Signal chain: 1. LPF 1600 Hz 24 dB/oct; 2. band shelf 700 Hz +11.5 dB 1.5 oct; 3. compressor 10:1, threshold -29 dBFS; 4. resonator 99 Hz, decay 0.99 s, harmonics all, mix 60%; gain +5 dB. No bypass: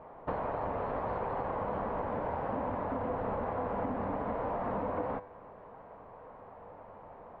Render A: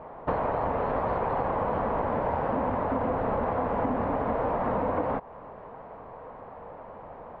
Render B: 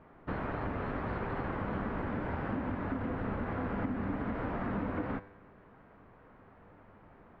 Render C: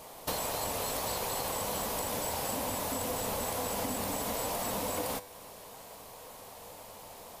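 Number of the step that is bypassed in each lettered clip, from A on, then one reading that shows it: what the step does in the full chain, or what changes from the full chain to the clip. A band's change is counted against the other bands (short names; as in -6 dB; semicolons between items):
4, loudness change +7.0 LU; 2, 1 kHz band -9.5 dB; 1, 2 kHz band +6.0 dB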